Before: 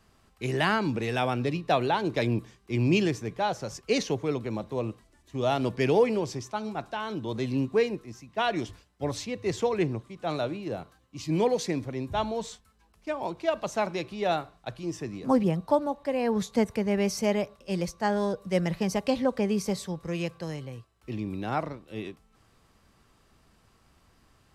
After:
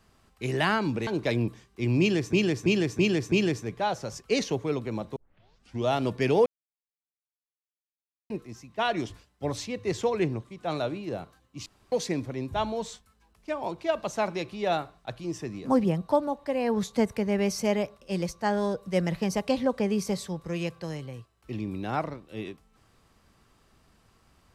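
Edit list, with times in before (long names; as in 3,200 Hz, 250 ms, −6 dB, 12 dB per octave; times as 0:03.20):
0:01.07–0:01.98: remove
0:02.91–0:03.24: repeat, 5 plays
0:04.75: tape start 0.69 s
0:06.05–0:07.89: silence
0:11.25–0:11.51: fill with room tone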